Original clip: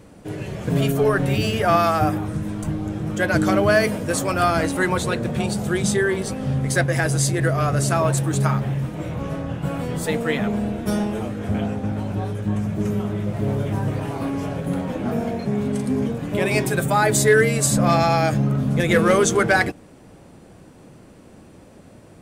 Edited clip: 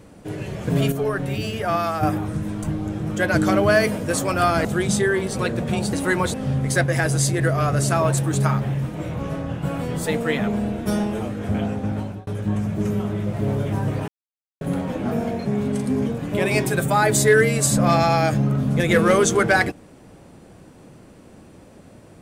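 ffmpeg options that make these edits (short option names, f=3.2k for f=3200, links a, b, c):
-filter_complex "[0:a]asplit=10[a][b][c][d][e][f][g][h][i][j];[a]atrim=end=0.922[k];[b]atrim=start=0.918:end=2.032,asetpts=PTS-STARTPTS,volume=-5dB[l];[c]atrim=start=2.028:end=4.652[m];[d]atrim=start=5.598:end=6.342[n];[e]atrim=start=5.058:end=5.602[o];[f]atrim=start=4.648:end=5.062[p];[g]atrim=start=6.338:end=12.27,asetpts=PTS-STARTPTS,afade=t=out:st=5.652:d=0.28[q];[h]atrim=start=12.27:end=14.08,asetpts=PTS-STARTPTS,afade=t=in:d=0.004:c=hsin,afade=t=out:st=1.806:d=0.004:c=hsin[r];[i]atrim=start=14.08:end=14.61,asetpts=PTS-STARTPTS,volume=0[s];[j]atrim=start=14.61,asetpts=PTS-STARTPTS,afade=t=in:d=0.004:c=hsin[t];[k][l]acrossfade=d=0.004:c1=hsin:c2=hsin[u];[u][m]acrossfade=d=0.004:c1=hsin:c2=hsin[v];[v][n]acrossfade=d=0.004:c1=hsin:c2=hsin[w];[w][o]acrossfade=d=0.004:c1=hsin:c2=hsin[x];[x][p]acrossfade=d=0.004:c1=hsin:c2=hsin[y];[q][r][s][t]concat=n=4:v=0:a=1[z];[y][z]acrossfade=d=0.004:c1=hsin:c2=hsin"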